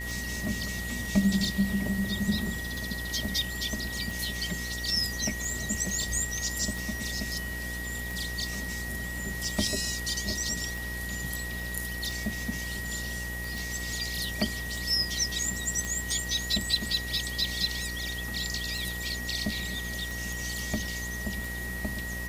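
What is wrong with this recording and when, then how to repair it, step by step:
mains buzz 60 Hz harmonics 17 −38 dBFS
scratch tick 45 rpm
whistle 1,900 Hz −36 dBFS
0:13.58: click
0:15.85: click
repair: click removal
hum removal 60 Hz, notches 17
notch filter 1,900 Hz, Q 30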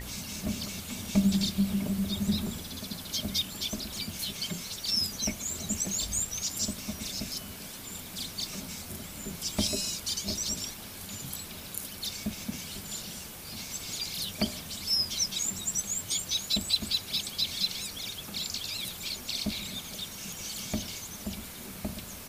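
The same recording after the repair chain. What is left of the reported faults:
none of them is left

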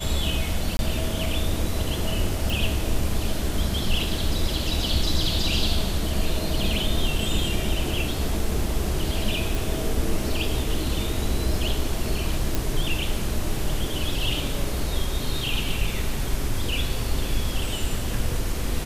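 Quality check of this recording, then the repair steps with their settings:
0:00.77–0:00.79: drop-out 21 ms
0:02.50: click
0:09.55: click
0:12.55: click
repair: click removal
repair the gap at 0:00.77, 21 ms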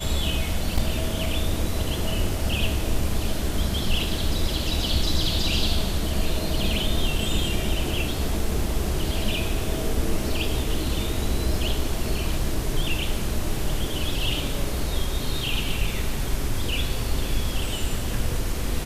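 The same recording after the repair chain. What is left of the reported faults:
none of them is left

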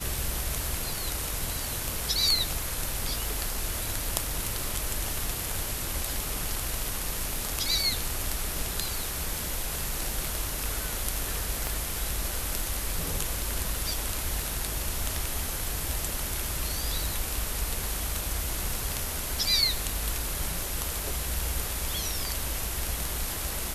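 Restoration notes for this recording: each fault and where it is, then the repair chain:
0:11.67: click −14 dBFS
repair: click removal

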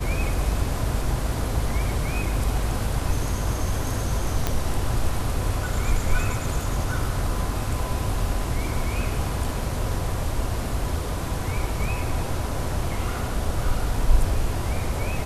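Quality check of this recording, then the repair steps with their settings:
0:04.47: click −7 dBFS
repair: click removal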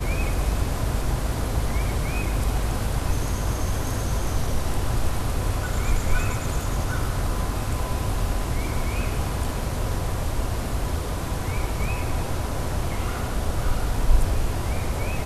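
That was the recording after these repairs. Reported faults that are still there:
none of them is left

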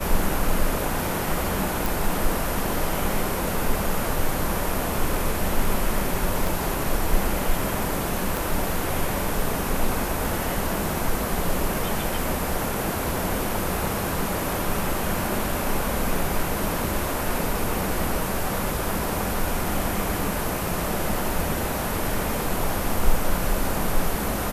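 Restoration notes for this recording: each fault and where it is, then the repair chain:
0:01.86: click
0:06.47: click
0:08.37: click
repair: click removal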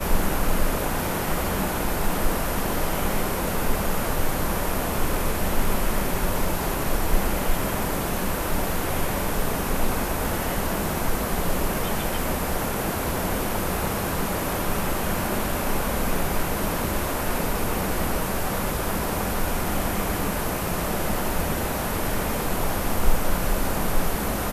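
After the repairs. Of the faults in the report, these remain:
0:06.47: click
0:08.37: click

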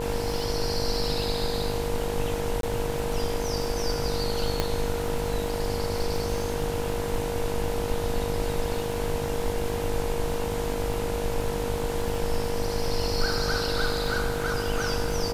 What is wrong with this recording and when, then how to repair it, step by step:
mains buzz 50 Hz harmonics 20 −33 dBFS
surface crackle 52 per second −34 dBFS
whistle 470 Hz −30 dBFS
0:02.61–0:02.63: drop-out 22 ms
0:04.60: click −9 dBFS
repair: click removal
hum removal 50 Hz, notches 20
notch filter 470 Hz, Q 30
repair the gap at 0:02.61, 22 ms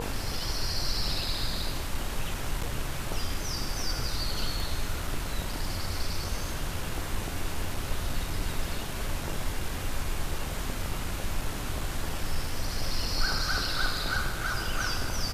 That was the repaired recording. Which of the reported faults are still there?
0:04.60: click

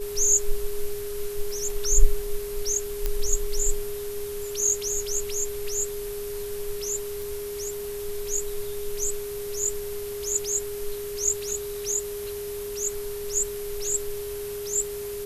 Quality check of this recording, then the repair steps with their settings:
whistle 410 Hz −31 dBFS
0:03.06: click −11 dBFS
0:07.22: click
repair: click removal
notch filter 410 Hz, Q 30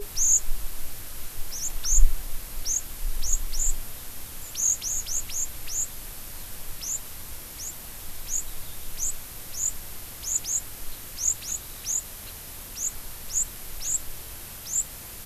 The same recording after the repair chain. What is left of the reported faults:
none of them is left

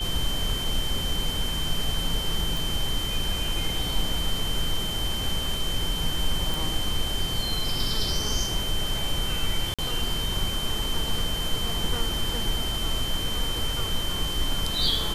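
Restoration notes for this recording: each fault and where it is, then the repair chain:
whistle 3,100 Hz −30 dBFS
0:02.57: click
0:06.54: click
0:09.74–0:09.79: drop-out 46 ms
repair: click removal
notch filter 3,100 Hz, Q 30
repair the gap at 0:09.74, 46 ms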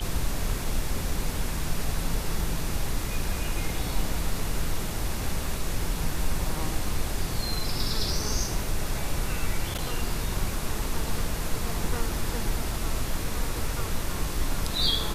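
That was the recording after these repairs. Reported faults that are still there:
none of them is left

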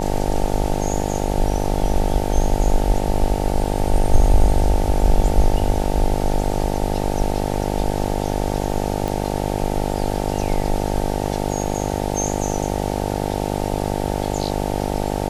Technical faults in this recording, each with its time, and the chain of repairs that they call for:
mains buzz 50 Hz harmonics 18 −23 dBFS
0:09.08: click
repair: click removal
hum removal 50 Hz, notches 18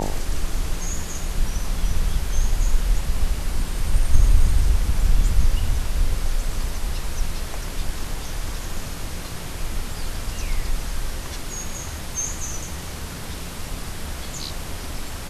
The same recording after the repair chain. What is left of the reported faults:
none of them is left

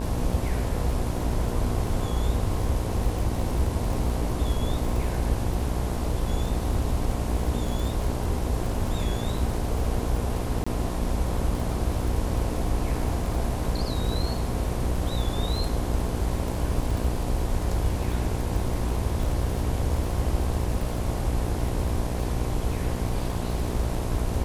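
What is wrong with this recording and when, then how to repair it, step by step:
mains buzz 60 Hz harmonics 18 −30 dBFS
surface crackle 32 per second −30 dBFS
0:10.64–0:10.66: drop-out 25 ms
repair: click removal
hum removal 60 Hz, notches 18
repair the gap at 0:10.64, 25 ms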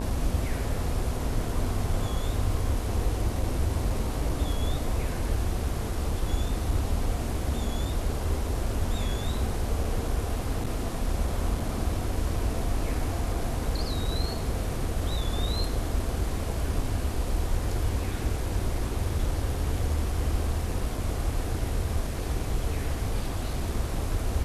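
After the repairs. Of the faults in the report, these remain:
none of them is left

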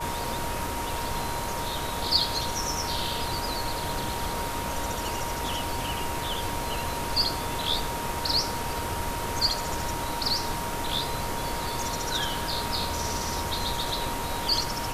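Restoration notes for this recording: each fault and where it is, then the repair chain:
whistle 940 Hz −34 dBFS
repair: notch filter 940 Hz, Q 30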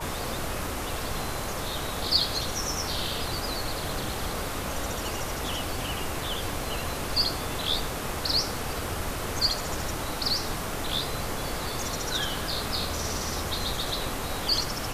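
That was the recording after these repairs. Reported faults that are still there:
none of them is left

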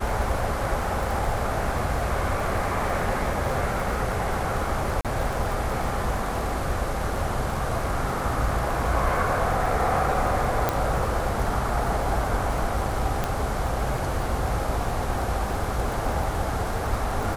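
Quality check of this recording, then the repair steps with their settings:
surface crackle 45 per second −29 dBFS
0:05.01–0:05.05: drop-out 37 ms
0:10.69: click −8 dBFS
0:13.24: click −11 dBFS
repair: click removal
repair the gap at 0:05.01, 37 ms

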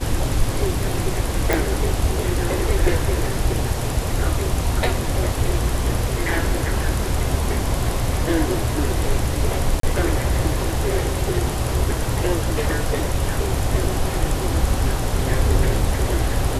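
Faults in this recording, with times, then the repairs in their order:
0:01.53: click
0:09.80–0:09.83: drop-out 33 ms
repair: click removal
repair the gap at 0:09.80, 33 ms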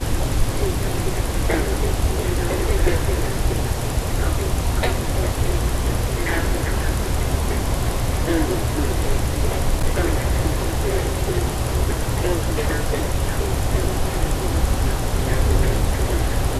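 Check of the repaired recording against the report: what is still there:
none of them is left

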